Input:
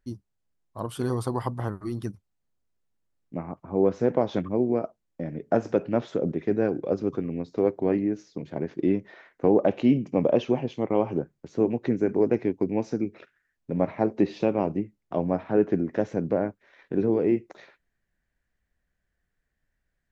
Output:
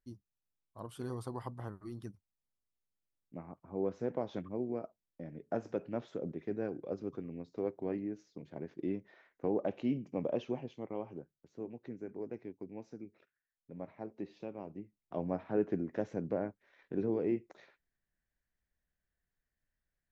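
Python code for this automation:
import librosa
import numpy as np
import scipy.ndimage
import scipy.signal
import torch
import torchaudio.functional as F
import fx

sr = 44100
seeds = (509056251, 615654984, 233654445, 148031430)

y = fx.gain(x, sr, db=fx.line((10.54, -13.0), (11.33, -20.0), (14.66, -20.0), (15.23, -10.0)))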